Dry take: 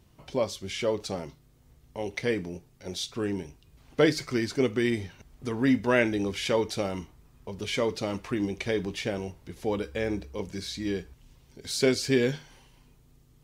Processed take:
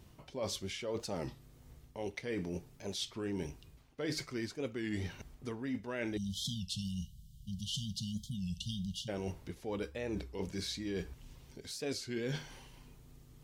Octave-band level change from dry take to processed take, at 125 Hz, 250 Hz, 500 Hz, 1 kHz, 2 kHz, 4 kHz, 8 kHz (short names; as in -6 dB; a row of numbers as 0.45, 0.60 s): -6.0, -10.5, -13.0, -12.5, -13.0, -6.0, -6.0 dB